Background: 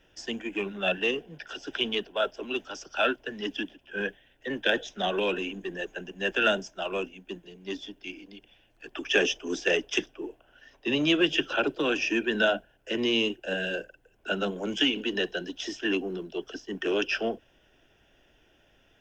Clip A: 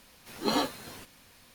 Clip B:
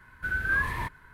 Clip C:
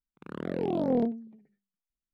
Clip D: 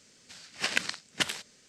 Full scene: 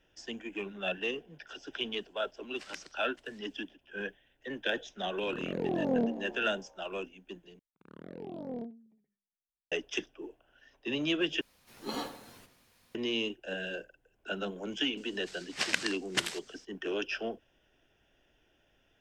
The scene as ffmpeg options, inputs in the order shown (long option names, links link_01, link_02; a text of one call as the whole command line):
ffmpeg -i bed.wav -i cue0.wav -i cue1.wav -i cue2.wav -i cue3.wav -filter_complex "[4:a]asplit=2[link_01][link_02];[3:a]asplit=2[link_03][link_04];[0:a]volume=-7dB[link_05];[link_01]aeval=exprs='val(0)*pow(10,-19*(0.5-0.5*cos(2*PI*1.3*n/s))/20)':channel_layout=same[link_06];[link_03]asplit=7[link_07][link_08][link_09][link_10][link_11][link_12][link_13];[link_08]adelay=133,afreqshift=64,volume=-15dB[link_14];[link_09]adelay=266,afreqshift=128,volume=-19.7dB[link_15];[link_10]adelay=399,afreqshift=192,volume=-24.5dB[link_16];[link_11]adelay=532,afreqshift=256,volume=-29.2dB[link_17];[link_12]adelay=665,afreqshift=320,volume=-33.9dB[link_18];[link_13]adelay=798,afreqshift=384,volume=-38.7dB[link_19];[link_07][link_14][link_15][link_16][link_17][link_18][link_19]amix=inputs=7:normalize=0[link_20];[1:a]asplit=2[link_21][link_22];[link_22]adelay=83,lowpass=frequency=2000:poles=1,volume=-9dB,asplit=2[link_23][link_24];[link_24]adelay=83,lowpass=frequency=2000:poles=1,volume=0.46,asplit=2[link_25][link_26];[link_26]adelay=83,lowpass=frequency=2000:poles=1,volume=0.46,asplit=2[link_27][link_28];[link_28]adelay=83,lowpass=frequency=2000:poles=1,volume=0.46,asplit=2[link_29][link_30];[link_30]adelay=83,lowpass=frequency=2000:poles=1,volume=0.46[link_31];[link_21][link_23][link_25][link_27][link_29][link_31]amix=inputs=6:normalize=0[link_32];[link_05]asplit=3[link_33][link_34][link_35];[link_33]atrim=end=7.594[link_36];[link_04]atrim=end=2.13,asetpts=PTS-STARTPTS,volume=-13.5dB[link_37];[link_34]atrim=start=9.716:end=11.414[link_38];[link_32]atrim=end=1.54,asetpts=PTS-STARTPTS,volume=-9.5dB[link_39];[link_35]atrim=start=12.946[link_40];[link_06]atrim=end=1.68,asetpts=PTS-STARTPTS,volume=-16.5dB,afade=type=in:duration=0.004:curve=hsin,afade=type=out:start_time=1.676:duration=0.004:curve=hsin,adelay=1970[link_41];[link_20]atrim=end=2.13,asetpts=PTS-STARTPTS,volume=-3dB,afade=type=in:duration=0.004:curve=hsin,afade=type=out:start_time=2.126:duration=0.004:curve=hsin,adelay=220941S[link_42];[link_02]atrim=end=1.68,asetpts=PTS-STARTPTS,volume=-2dB,afade=type=in:duration=0.004:curve=hsin,afade=type=out:start_time=1.676:duration=0.004:curve=hsin,adelay=14970[link_43];[link_36][link_37]acrossfade=duration=0.004:curve1=hsin:curve2=hsin[link_44];[link_44][link_38]acrossfade=duration=0.004:curve1=hsin:curve2=hsin[link_45];[link_45][link_39]acrossfade=duration=0.004:curve1=hsin:curve2=hsin[link_46];[link_46][link_40]acrossfade=duration=0.004:curve1=hsin:curve2=hsin[link_47];[link_47][link_41][link_42][link_43]amix=inputs=4:normalize=0" out.wav